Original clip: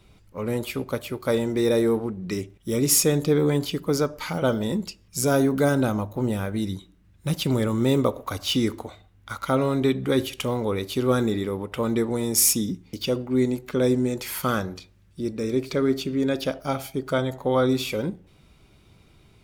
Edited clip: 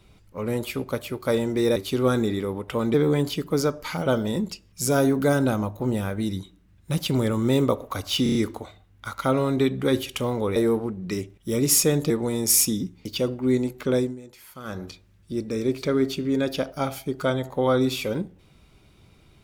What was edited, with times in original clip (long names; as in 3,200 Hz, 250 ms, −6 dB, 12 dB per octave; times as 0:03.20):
0:01.76–0:03.30: swap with 0:10.80–0:11.98
0:08.59: stutter 0.03 s, 5 plays
0:13.82–0:14.73: duck −16.5 dB, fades 0.22 s